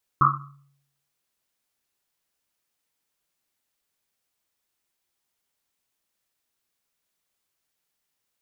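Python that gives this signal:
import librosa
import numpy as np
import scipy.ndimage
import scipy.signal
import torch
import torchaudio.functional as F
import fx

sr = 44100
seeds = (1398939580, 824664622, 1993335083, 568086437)

y = fx.risset_drum(sr, seeds[0], length_s=1.1, hz=140.0, decay_s=0.76, noise_hz=1200.0, noise_width_hz=250.0, noise_pct=75)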